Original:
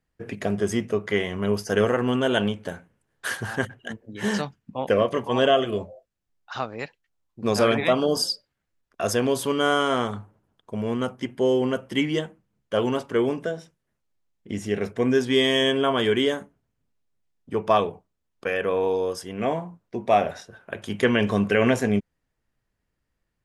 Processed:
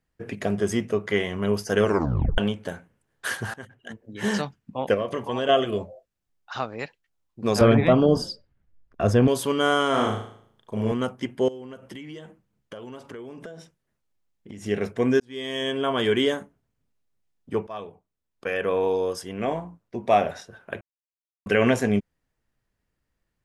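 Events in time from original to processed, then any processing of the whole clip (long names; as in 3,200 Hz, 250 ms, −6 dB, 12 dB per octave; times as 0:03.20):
0:01.84: tape stop 0.54 s
0:03.54–0:04.22: fade in, from −22 dB
0:04.94–0:05.49: downward compressor 3 to 1, threshold −24 dBFS
0:07.61–0:09.28: RIAA equalisation playback
0:09.90–0:10.92: flutter between parallel walls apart 6.3 metres, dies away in 0.59 s
0:11.48–0:14.66: downward compressor 16 to 1, threshold −35 dBFS
0:15.20–0:16.13: fade in
0:17.67–0:18.71: fade in, from −21.5 dB
0:19.38–0:20.04: amplitude modulation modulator 110 Hz, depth 25%
0:20.81–0:21.46: silence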